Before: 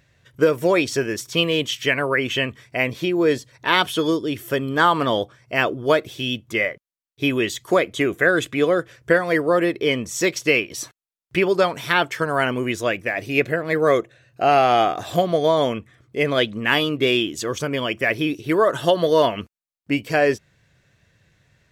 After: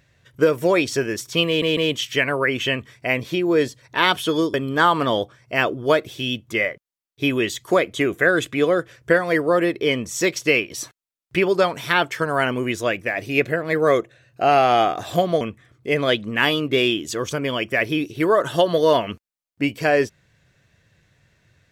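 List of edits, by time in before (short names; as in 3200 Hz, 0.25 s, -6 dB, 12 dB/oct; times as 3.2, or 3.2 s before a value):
1.47 stutter 0.15 s, 3 plays
4.24–4.54 cut
15.41–15.7 cut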